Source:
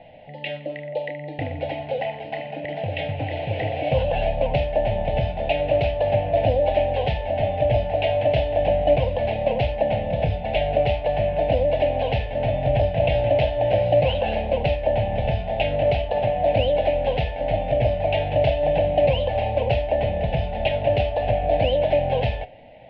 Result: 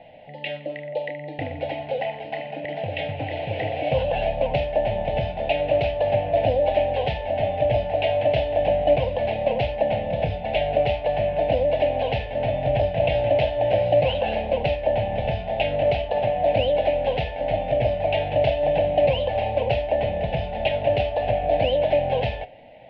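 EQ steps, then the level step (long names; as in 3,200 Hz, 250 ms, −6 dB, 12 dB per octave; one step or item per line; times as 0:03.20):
low-shelf EQ 130 Hz −6.5 dB
0.0 dB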